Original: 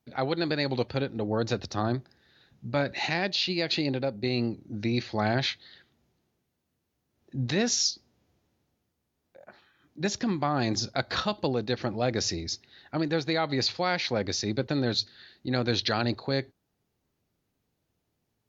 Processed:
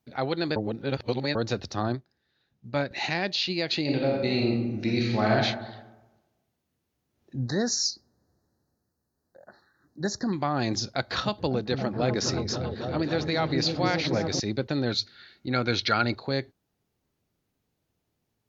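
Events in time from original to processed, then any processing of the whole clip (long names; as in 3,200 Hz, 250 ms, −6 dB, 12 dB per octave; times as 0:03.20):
0:00.56–0:01.35: reverse
0:01.92–0:02.91: expander for the loud parts, over −47 dBFS
0:03.81–0:05.34: thrown reverb, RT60 1.1 s, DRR −2 dB
0:07.39–0:10.33: elliptic band-stop filter 1,800–4,100 Hz
0:10.93–0:14.40: echo whose low-pass opens from repeat to repeat 275 ms, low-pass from 200 Hz, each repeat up 1 octave, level 0 dB
0:14.90–0:16.15: hollow resonant body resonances 1,400/2,200 Hz, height 13 dB → 16 dB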